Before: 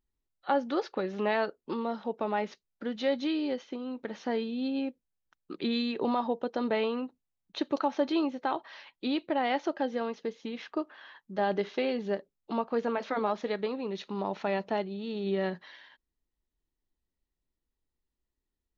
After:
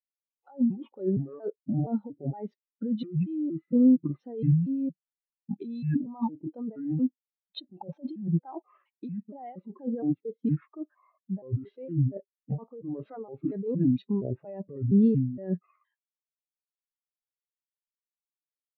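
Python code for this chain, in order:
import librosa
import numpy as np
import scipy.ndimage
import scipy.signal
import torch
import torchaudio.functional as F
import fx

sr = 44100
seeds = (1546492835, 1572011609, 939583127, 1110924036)

y = fx.pitch_trill(x, sr, semitones=-7.5, every_ms=233)
y = fx.low_shelf(y, sr, hz=71.0, db=2.5)
y = fx.over_compress(y, sr, threshold_db=-36.0, ratio=-1.0)
y = fx.spectral_expand(y, sr, expansion=2.5)
y = F.gain(torch.from_numpy(y), 7.0).numpy()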